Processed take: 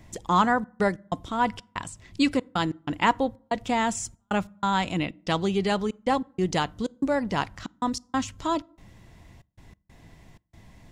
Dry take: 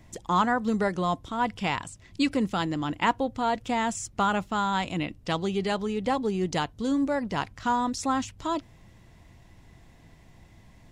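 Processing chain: trance gate "xxxx.x.xxx." 94 bpm -60 dB; on a send: reverberation RT60 0.55 s, pre-delay 5 ms, DRR 23 dB; on the sum: trim +2.5 dB

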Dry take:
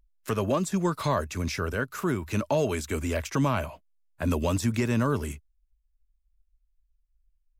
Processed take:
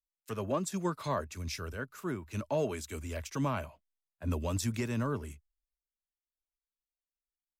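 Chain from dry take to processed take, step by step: three bands expanded up and down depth 100%; trim -8 dB

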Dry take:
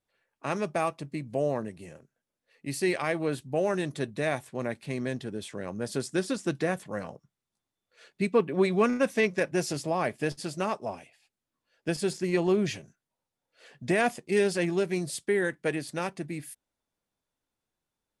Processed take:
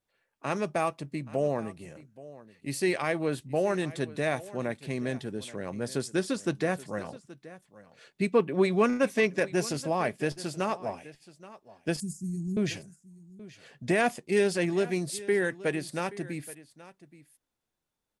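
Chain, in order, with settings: 12.00–12.57 s: elliptic band-stop 220–7100 Hz, stop band 40 dB; delay 826 ms -18.5 dB

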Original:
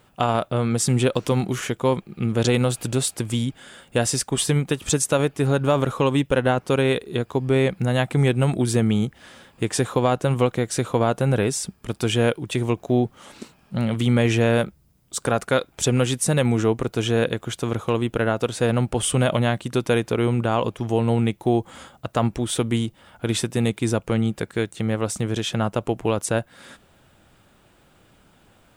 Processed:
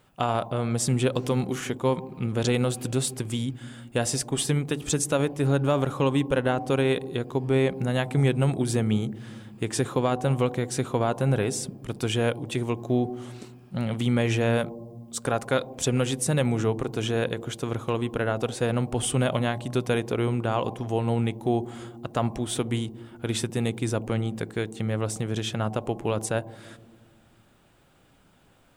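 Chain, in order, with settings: on a send: rippled Chebyshev low-pass 1.1 kHz, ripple 9 dB + reverberation RT60 1.5 s, pre-delay 6 ms, DRR 16 dB; on the sum: trim -4.5 dB

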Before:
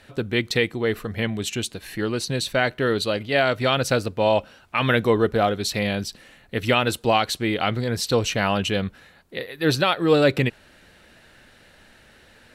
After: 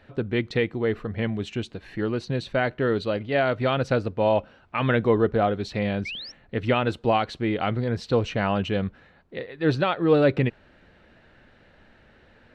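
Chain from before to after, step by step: painted sound rise, 6.05–6.32 s, 2.1–5.8 kHz -26 dBFS; tape spacing loss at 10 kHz 28 dB

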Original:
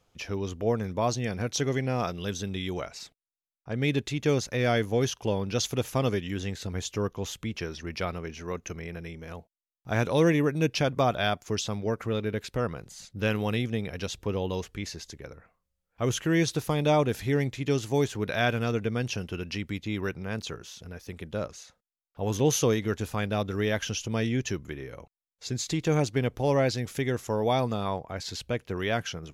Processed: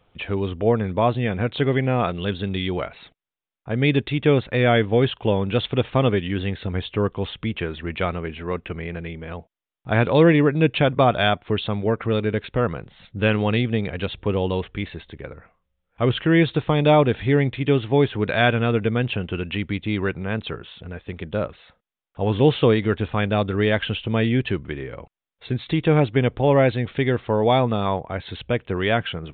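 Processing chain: resampled via 8 kHz; trim +7.5 dB

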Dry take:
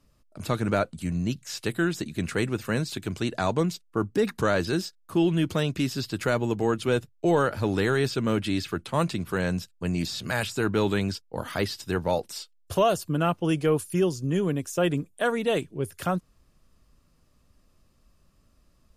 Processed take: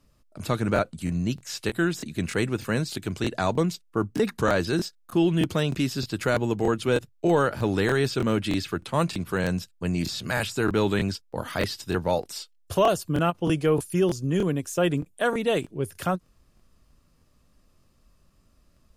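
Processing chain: crackling interface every 0.31 s, samples 1024, repeat, from 0.74 s; endings held to a fixed fall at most 590 dB/s; trim +1 dB

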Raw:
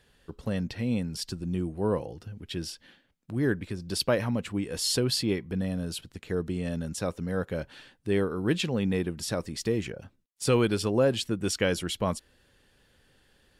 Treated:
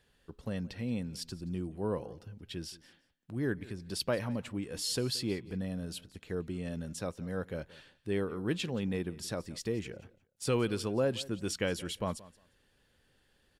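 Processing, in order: feedback delay 176 ms, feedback 19%, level -20 dB; trim -6.5 dB

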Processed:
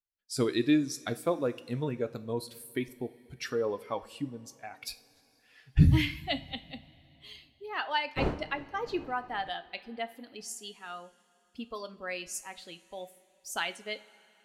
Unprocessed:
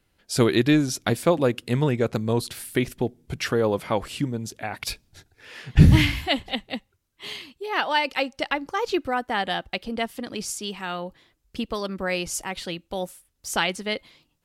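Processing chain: expander on every frequency bin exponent 1.5; 8.16–9.49 s: wind noise 520 Hz -33 dBFS; two-slope reverb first 0.33 s, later 3.2 s, from -19 dB, DRR 9.5 dB; trim -6.5 dB

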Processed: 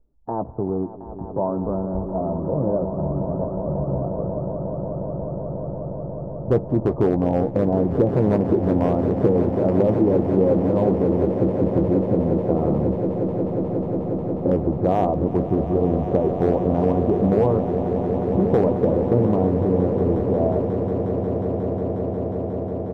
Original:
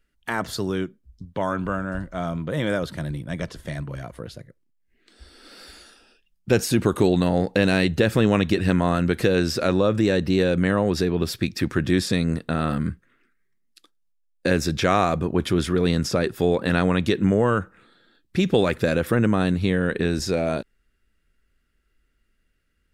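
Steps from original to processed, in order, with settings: rattle on loud lows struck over -25 dBFS, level -14 dBFS; steep low-pass 940 Hz 48 dB/octave; peaking EQ 190 Hz -4 dB 0.75 oct; in parallel at +1.5 dB: compression 20:1, threshold -32 dBFS, peak gain reduction 19 dB; on the sum: hard clipper -10 dBFS, distortion -25 dB; doubling 15 ms -11.5 dB; on a send: echo with a slow build-up 180 ms, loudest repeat 8, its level -12.5 dB

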